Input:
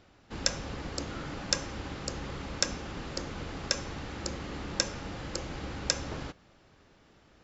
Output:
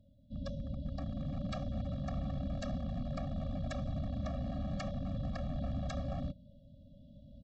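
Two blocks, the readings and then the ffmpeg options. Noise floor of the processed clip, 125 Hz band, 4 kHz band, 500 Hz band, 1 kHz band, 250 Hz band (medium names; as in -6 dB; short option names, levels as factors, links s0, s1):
-59 dBFS, +3.5 dB, -19.5 dB, -4.0 dB, -6.0 dB, +1.0 dB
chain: -af "asuperstop=centerf=1400:order=20:qfactor=0.52,dynaudnorm=f=740:g=3:m=3.98,lowpass=f=2600:w=0.5412,lowpass=f=2600:w=1.3066,aresample=16000,aeval=exprs='0.0316*(abs(mod(val(0)/0.0316+3,4)-2)-1)':c=same,aresample=44100,afftfilt=real='re*eq(mod(floor(b*sr/1024/270),2),0)':imag='im*eq(mod(floor(b*sr/1024/270),2),0)':win_size=1024:overlap=0.75"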